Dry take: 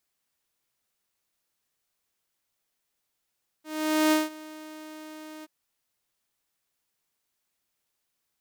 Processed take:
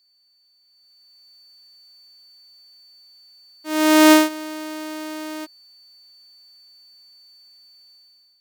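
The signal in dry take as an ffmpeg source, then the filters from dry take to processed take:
-f lavfi -i "aevalsrc='0.158*(2*mod(310*t,1)-1)':d=1.828:s=44100,afade=t=in:d=0.476,afade=t=out:st=0.476:d=0.176:silence=0.0794,afade=t=out:st=1.8:d=0.028"
-af "aeval=exprs='val(0)+0.001*sin(2*PI*4500*n/s)':c=same,dynaudnorm=f=660:g=3:m=12dB"

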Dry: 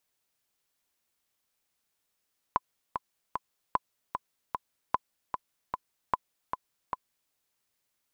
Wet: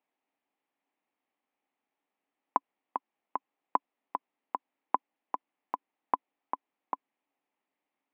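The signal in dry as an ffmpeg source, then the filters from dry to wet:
-f lavfi -i "aevalsrc='pow(10,(-11-6.5*gte(mod(t,3*60/151),60/151))/20)*sin(2*PI*1010*mod(t,60/151))*exp(-6.91*mod(t,60/151)/0.03)':d=4.76:s=44100"
-af "highpass=f=200:w=0.5412,highpass=f=200:w=1.3066,equalizer=f=280:t=q:w=4:g=8,equalizer=f=800:t=q:w=4:g=7,equalizer=f=1.5k:t=q:w=4:g=-7,lowpass=f=2.5k:w=0.5412,lowpass=f=2.5k:w=1.3066"

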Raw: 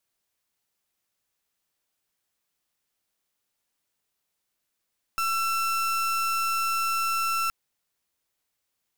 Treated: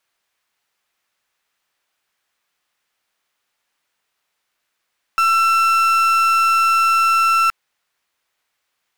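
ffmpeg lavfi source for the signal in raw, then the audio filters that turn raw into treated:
-f lavfi -i "aevalsrc='0.0501*(2*lt(mod(1340*t,1),0.36)-1)':d=2.32:s=44100"
-af "equalizer=f=1.6k:w=0.33:g=12.5"

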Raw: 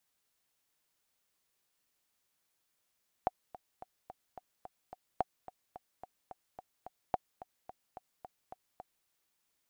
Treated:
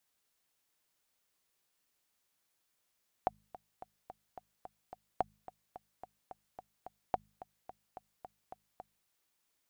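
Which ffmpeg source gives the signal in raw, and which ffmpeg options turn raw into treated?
-f lavfi -i "aevalsrc='pow(10,(-16-17*gte(mod(t,7*60/217),60/217))/20)*sin(2*PI*742*mod(t,60/217))*exp(-6.91*mod(t,60/217)/0.03)':d=5.8:s=44100"
-af "bandreject=f=51.99:t=h:w=4,bandreject=f=103.98:t=h:w=4,bandreject=f=155.97:t=h:w=4,bandreject=f=207.96:t=h:w=4"

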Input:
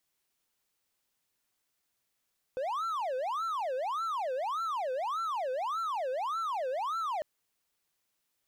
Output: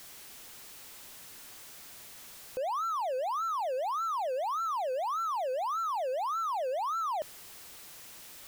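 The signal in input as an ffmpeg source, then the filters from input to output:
-f lavfi -i "aevalsrc='0.0376*(1-4*abs(mod((928*t-422/(2*PI*1.7)*sin(2*PI*1.7*t))+0.25,1)-0.5))':d=4.65:s=44100"
-af "aeval=exprs='val(0)+0.5*0.00708*sgn(val(0))':c=same"

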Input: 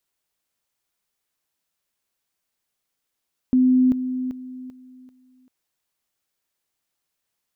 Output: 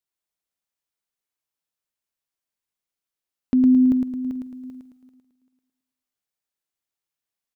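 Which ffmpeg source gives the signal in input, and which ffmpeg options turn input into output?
-f lavfi -i "aevalsrc='pow(10,(-13-10*floor(t/0.39))/20)*sin(2*PI*255*t)':d=1.95:s=44100"
-filter_complex "[0:a]agate=range=-11dB:threshold=-46dB:ratio=16:detection=peak,asplit=2[a][b];[b]aecho=0:1:109|218|327|436|545|654:0.631|0.29|0.134|0.0614|0.0283|0.013[c];[a][c]amix=inputs=2:normalize=0"

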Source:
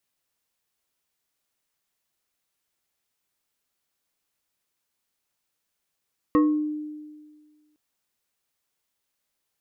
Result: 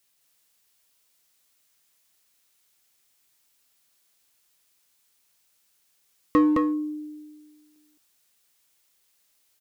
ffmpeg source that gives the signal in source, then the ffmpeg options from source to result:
-f lavfi -i "aevalsrc='0.2*pow(10,-3*t/1.66)*sin(2*PI*302*t+0.91*pow(10,-3*t/0.48)*sin(2*PI*2.61*302*t))':d=1.41:s=44100"
-filter_complex "[0:a]highshelf=f=2.1k:g=8.5,aecho=1:1:214:0.708,asplit=2[a][b];[b]asoftclip=type=hard:threshold=-26dB,volume=-8.5dB[c];[a][c]amix=inputs=2:normalize=0"

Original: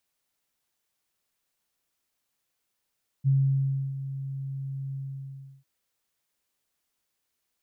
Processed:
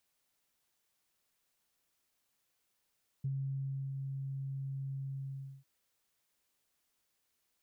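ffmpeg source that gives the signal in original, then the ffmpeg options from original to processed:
-f lavfi -i "aevalsrc='0.126*sin(2*PI*136*t)':d=2.397:s=44100,afade=t=in:d=0.035,afade=t=out:st=0.035:d=0.659:silence=0.224,afade=t=out:st=1.7:d=0.697"
-af "acompressor=threshold=-39dB:ratio=4"

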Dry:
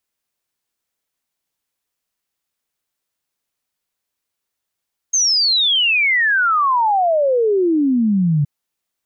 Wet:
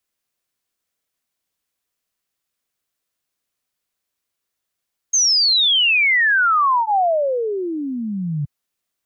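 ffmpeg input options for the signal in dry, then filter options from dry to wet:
-f lavfi -i "aevalsrc='0.237*clip(min(t,3.32-t)/0.01,0,1)*sin(2*PI*6500*3.32/log(140/6500)*(exp(log(140/6500)*t/3.32)-1))':d=3.32:s=44100"
-filter_complex "[0:a]bandreject=f=880:w=12,acrossover=split=100|640|1100[a][b][c][d];[b]alimiter=limit=-23dB:level=0:latency=1[e];[a][e][c][d]amix=inputs=4:normalize=0"

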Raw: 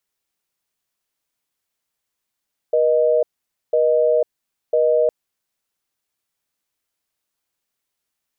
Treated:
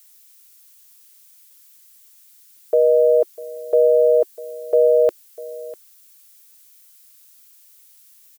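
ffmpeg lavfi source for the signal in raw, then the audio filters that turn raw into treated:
-f lavfi -i "aevalsrc='0.158*(sin(2*PI*480*t)+sin(2*PI*620*t))*clip(min(mod(t,1),0.5-mod(t,1))/0.005,0,1)':d=2.36:s=44100"
-af "firequalizer=gain_entry='entry(240,0);entry(360,9);entry(550,-2);entry(1200,8)':delay=0.05:min_phase=1,crystalizer=i=7.5:c=0,aecho=1:1:648:0.119"

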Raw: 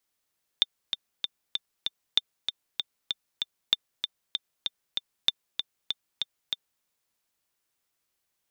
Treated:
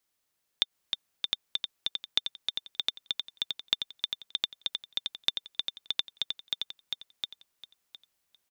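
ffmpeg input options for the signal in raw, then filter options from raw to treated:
-f lavfi -i "aevalsrc='pow(10,(-7-7.5*gte(mod(t,5*60/193),60/193))/20)*sin(2*PI*3580*mod(t,60/193))*exp(-6.91*mod(t,60/193)/0.03)':d=6.21:s=44100"
-filter_complex "[0:a]acompressor=threshold=-23dB:ratio=2.5,asplit=2[a][b];[b]aecho=0:1:710|1420|2130:0.708|0.135|0.0256[c];[a][c]amix=inputs=2:normalize=0"

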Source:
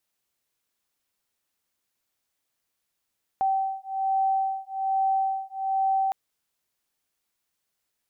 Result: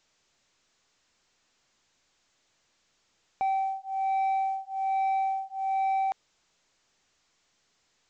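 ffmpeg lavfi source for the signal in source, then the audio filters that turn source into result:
-f lavfi -i "aevalsrc='0.0501*(sin(2*PI*772*t)+sin(2*PI*773.2*t))':d=2.71:s=44100"
-af "asoftclip=type=tanh:threshold=-23dB" -ar 16000 -c:a pcm_alaw

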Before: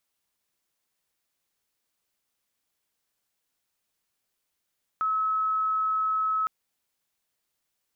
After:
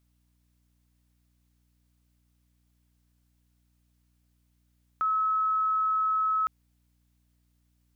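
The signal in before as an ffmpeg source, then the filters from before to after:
-f lavfi -i "sine=f=1290:d=1.46:r=44100,volume=-4.94dB"
-af "aeval=exprs='val(0)+0.000398*(sin(2*PI*60*n/s)+sin(2*PI*2*60*n/s)/2+sin(2*PI*3*60*n/s)/3+sin(2*PI*4*60*n/s)/4+sin(2*PI*5*60*n/s)/5)':c=same"

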